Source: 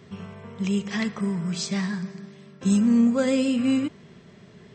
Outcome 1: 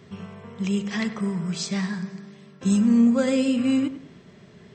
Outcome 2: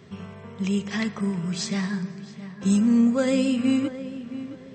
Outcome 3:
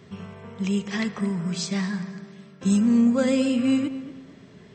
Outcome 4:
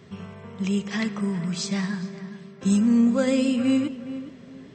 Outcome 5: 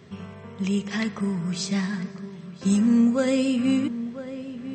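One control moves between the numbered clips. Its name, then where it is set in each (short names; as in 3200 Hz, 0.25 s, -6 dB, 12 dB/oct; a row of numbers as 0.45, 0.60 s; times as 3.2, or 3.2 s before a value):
darkening echo, time: 98, 668, 229, 414, 997 ms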